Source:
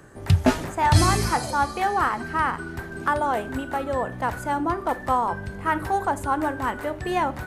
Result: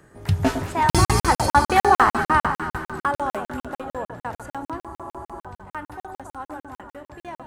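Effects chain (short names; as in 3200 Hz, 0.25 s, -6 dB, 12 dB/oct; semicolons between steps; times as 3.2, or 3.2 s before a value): Doppler pass-by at 1.86, 12 m/s, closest 5.7 m; on a send: echo with dull and thin repeats by turns 0.107 s, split 1400 Hz, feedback 74%, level -8 dB; on the sum: spectral freeze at 4.85, 0.55 s; crackling interface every 0.15 s, samples 2048, zero, from 0.9; gain +8 dB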